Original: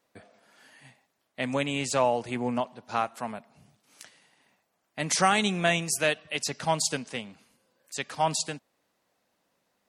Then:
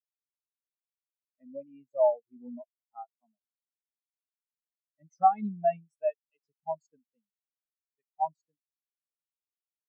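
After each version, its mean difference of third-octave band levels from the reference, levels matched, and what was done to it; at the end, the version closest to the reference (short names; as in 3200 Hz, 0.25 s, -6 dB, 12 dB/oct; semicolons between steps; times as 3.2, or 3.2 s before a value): 22.5 dB: in parallel at -8 dB: one-sided clip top -19 dBFS; on the sum: spectral expander 4:1; gain -4 dB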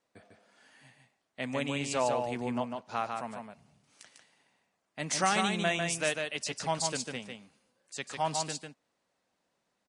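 4.0 dB: steep low-pass 10000 Hz 72 dB/oct; echo 0.149 s -4.5 dB; gain -5.5 dB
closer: second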